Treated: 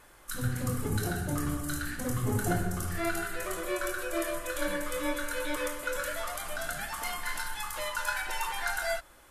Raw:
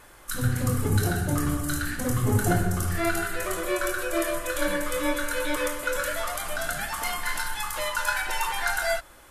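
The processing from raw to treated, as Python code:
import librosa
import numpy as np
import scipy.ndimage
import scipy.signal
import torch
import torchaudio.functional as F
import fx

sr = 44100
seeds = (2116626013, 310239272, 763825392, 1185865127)

y = fx.peak_eq(x, sr, hz=95.0, db=-5.5, octaves=0.21)
y = F.gain(torch.from_numpy(y), -5.5).numpy()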